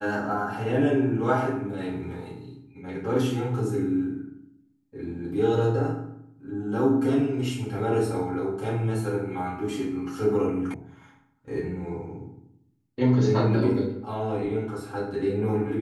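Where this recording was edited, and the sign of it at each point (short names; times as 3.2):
10.74 sound cut off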